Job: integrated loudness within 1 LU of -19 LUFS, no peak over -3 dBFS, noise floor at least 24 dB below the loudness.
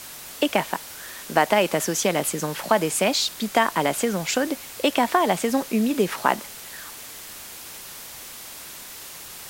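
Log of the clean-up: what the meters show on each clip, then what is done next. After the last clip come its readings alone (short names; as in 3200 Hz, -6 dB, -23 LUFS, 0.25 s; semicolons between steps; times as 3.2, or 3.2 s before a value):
noise floor -40 dBFS; noise floor target -47 dBFS; loudness -23.0 LUFS; peak -4.0 dBFS; loudness target -19.0 LUFS
-> denoiser 7 dB, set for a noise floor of -40 dBFS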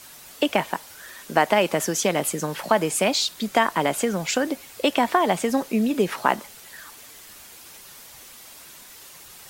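noise floor -45 dBFS; noise floor target -47 dBFS
-> denoiser 6 dB, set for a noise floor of -45 dBFS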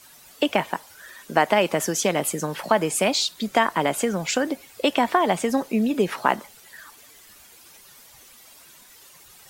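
noise floor -50 dBFS; loudness -23.0 LUFS; peak -4.0 dBFS; loudness target -19.0 LUFS
-> gain +4 dB; limiter -3 dBFS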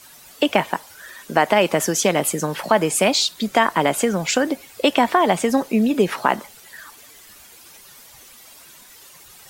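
loudness -19.5 LUFS; peak -3.0 dBFS; noise floor -46 dBFS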